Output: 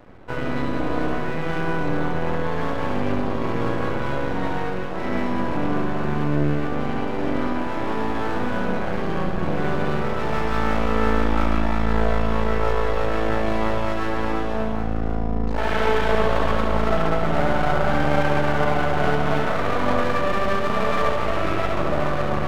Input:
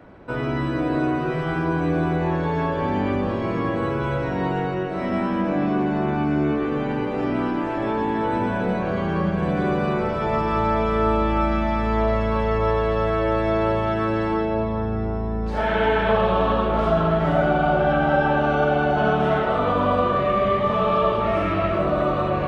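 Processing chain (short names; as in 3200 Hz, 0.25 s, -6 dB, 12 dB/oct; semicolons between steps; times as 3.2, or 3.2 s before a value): low shelf 65 Hz +8 dB; half-wave rectifier; flutter echo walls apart 11.8 m, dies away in 0.56 s; gain +1.5 dB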